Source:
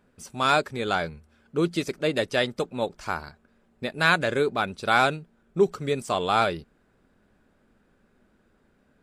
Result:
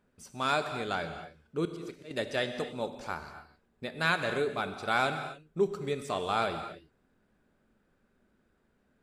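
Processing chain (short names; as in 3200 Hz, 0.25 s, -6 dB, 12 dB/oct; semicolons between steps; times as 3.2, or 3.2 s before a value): 1.65–2.11 auto swell 0.29 s; non-linear reverb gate 0.3 s flat, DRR 7.5 dB; gain -7.5 dB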